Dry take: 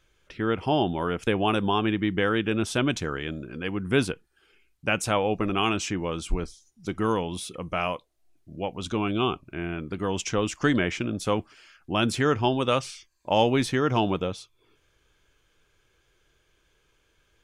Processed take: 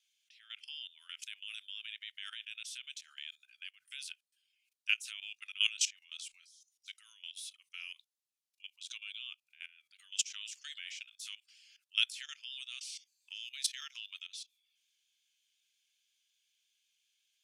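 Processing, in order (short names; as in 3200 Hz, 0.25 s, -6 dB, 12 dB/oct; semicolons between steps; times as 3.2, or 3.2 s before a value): inverse Chebyshev high-pass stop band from 630 Hz, stop band 70 dB; rotary speaker horn 0.8 Hz, later 5.5 Hz, at 3.39; level quantiser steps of 17 dB; gain +6 dB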